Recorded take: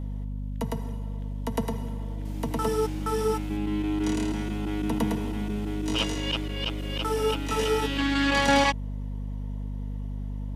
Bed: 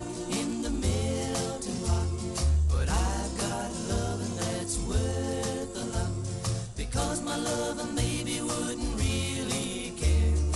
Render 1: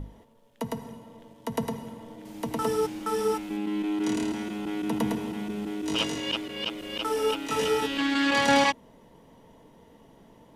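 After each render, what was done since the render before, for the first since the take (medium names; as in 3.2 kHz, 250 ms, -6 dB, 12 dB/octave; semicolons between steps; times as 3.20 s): hum notches 50/100/150/200/250 Hz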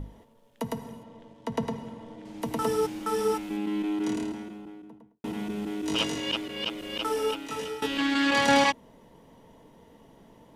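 1.03–2.42 s: distance through air 64 m; 3.67–5.24 s: studio fade out; 7.06–7.82 s: fade out, to -14 dB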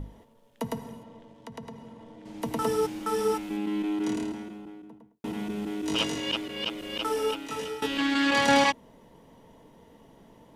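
1.18–2.26 s: compression 2:1, threshold -46 dBFS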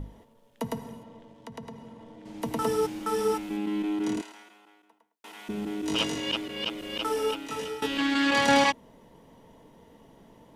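4.21–5.49 s: high-pass 1 kHz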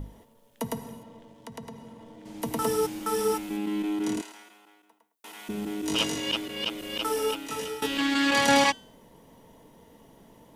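treble shelf 7.4 kHz +10.5 dB; de-hum 383.8 Hz, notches 27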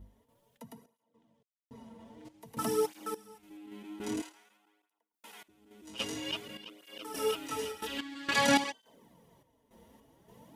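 random-step tremolo 3.5 Hz, depth 100%; cancelling through-zero flanger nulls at 0.51 Hz, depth 7.3 ms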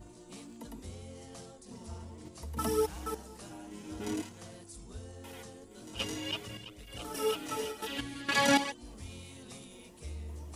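add bed -18 dB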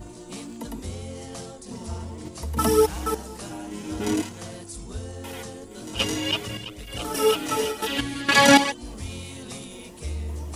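trim +11 dB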